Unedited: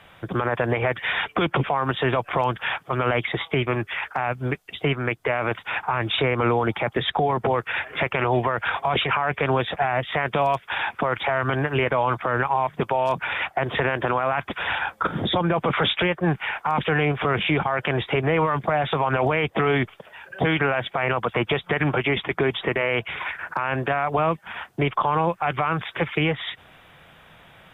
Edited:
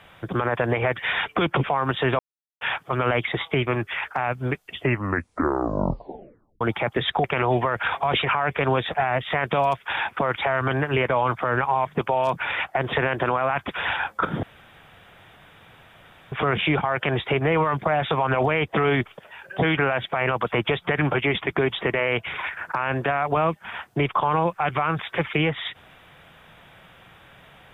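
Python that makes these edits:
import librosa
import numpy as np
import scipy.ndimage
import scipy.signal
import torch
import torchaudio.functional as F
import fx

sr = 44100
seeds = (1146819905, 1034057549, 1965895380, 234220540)

y = fx.edit(x, sr, fx.silence(start_s=2.19, length_s=0.42),
    fx.tape_stop(start_s=4.68, length_s=1.93),
    fx.cut(start_s=7.24, length_s=0.82),
    fx.room_tone_fill(start_s=15.25, length_s=1.89), tone=tone)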